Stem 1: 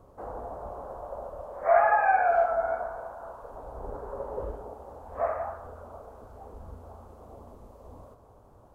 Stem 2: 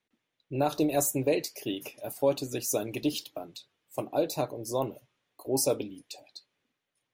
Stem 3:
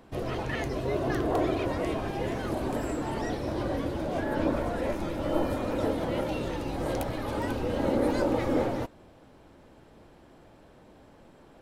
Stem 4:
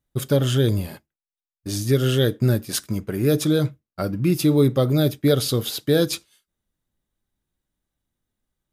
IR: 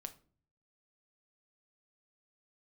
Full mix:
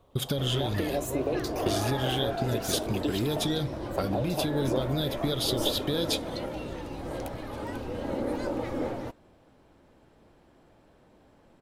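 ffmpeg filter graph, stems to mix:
-filter_complex "[0:a]volume=-7dB[a];[1:a]equalizer=f=500:t=o:w=2.6:g=12.5,acompressor=threshold=-19dB:ratio=6,volume=-3dB[b];[2:a]adelay=250,volume=-5dB[c];[3:a]acompressor=threshold=-23dB:ratio=6,volume=2dB[d];[a][b][d]amix=inputs=3:normalize=0,equalizer=f=3.4k:t=o:w=0.62:g=11,acompressor=threshold=-26dB:ratio=5,volume=0dB[e];[c][e]amix=inputs=2:normalize=0"

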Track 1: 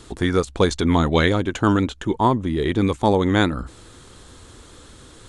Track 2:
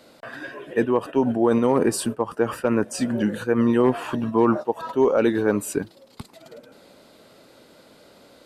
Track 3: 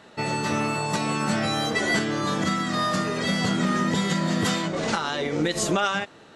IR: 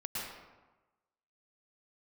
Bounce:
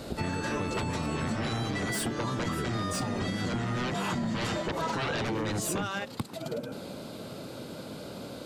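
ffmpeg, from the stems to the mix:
-filter_complex "[0:a]volume=-7.5dB[a];[1:a]equalizer=f=1.9k:t=o:w=0.21:g=-8.5,aeval=exprs='0.422*sin(PI/2*7.08*val(0)/0.422)':c=same,volume=-13.5dB[b];[2:a]asoftclip=type=tanh:threshold=-15.5dB,volume=-4dB[c];[a][b]amix=inputs=2:normalize=0,equalizer=f=130:w=0.69:g=10.5,alimiter=limit=-19dB:level=0:latency=1:release=171,volume=0dB[d];[c][d]amix=inputs=2:normalize=0,acompressor=threshold=-28dB:ratio=6"

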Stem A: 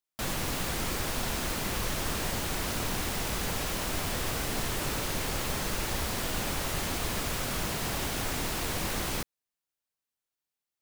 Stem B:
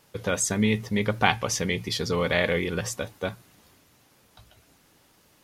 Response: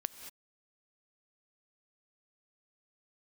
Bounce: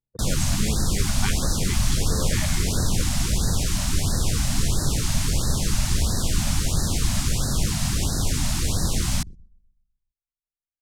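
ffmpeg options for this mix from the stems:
-filter_complex "[0:a]bass=f=250:g=14,treble=f=4k:g=12,volume=0dB,asplit=2[a][b];[b]volume=-16.5dB[c];[1:a]volume=-10.5dB,asplit=2[d][e];[e]volume=-8dB[f];[2:a]atrim=start_sample=2205[g];[f][g]afir=irnorm=-1:irlink=0[h];[c]aecho=0:1:127|254|381|508|635|762|889:1|0.5|0.25|0.125|0.0625|0.0312|0.0156[i];[a][d][h][i]amix=inputs=4:normalize=0,lowpass=8.5k,anlmdn=6.31,afftfilt=real='re*(1-between(b*sr/1024,370*pow(2700/370,0.5+0.5*sin(2*PI*1.5*pts/sr))/1.41,370*pow(2700/370,0.5+0.5*sin(2*PI*1.5*pts/sr))*1.41))':imag='im*(1-between(b*sr/1024,370*pow(2700/370,0.5+0.5*sin(2*PI*1.5*pts/sr))/1.41,370*pow(2700/370,0.5+0.5*sin(2*PI*1.5*pts/sr))*1.41))':win_size=1024:overlap=0.75"

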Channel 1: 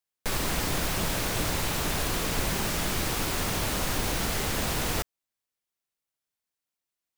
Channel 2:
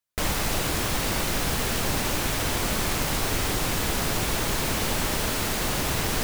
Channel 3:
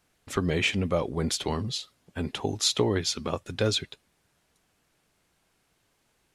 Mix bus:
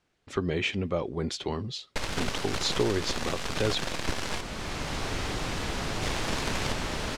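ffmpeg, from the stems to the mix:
-filter_complex "[0:a]aeval=exprs='0.178*(cos(1*acos(clip(val(0)/0.178,-1,1)))-cos(1*PI/2))+0.0562*(cos(6*acos(clip(val(0)/0.178,-1,1)))-cos(6*PI/2))+0.0562*(cos(7*acos(clip(val(0)/0.178,-1,1)))-cos(7*PI/2))':c=same,adelay=1700,volume=-6dB,asplit=3[a][b][c];[a]atrim=end=4.41,asetpts=PTS-STARTPTS,afade=t=out:st=4.406:d=0.004:c=hsin[d];[b]atrim=start=4.41:end=6.02,asetpts=PTS-STARTPTS,volume=0[e];[c]atrim=start=6.02,asetpts=PTS-STARTPTS,afade=t=in:d=0.004:c=hsin[f];[d][e][f]concat=n=3:v=0:a=1[g];[1:a]adelay=1800,volume=-5dB[h];[2:a]equalizer=f=370:t=o:w=0.35:g=4.5,volume=-3.5dB,asplit=2[i][j];[j]apad=whole_len=354544[k];[h][k]sidechaincompress=threshold=-36dB:ratio=8:attack=5.8:release=1130[l];[g][l][i]amix=inputs=3:normalize=0,lowpass=5.8k"

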